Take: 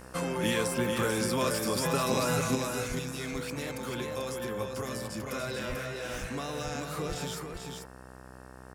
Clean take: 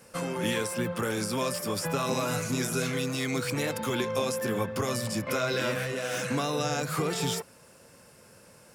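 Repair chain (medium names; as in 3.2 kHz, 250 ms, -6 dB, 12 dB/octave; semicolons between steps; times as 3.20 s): de-hum 63.8 Hz, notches 29; de-plosive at 2.88/5.68/6.20/7.08 s; inverse comb 440 ms -5 dB; trim 0 dB, from 2.55 s +7.5 dB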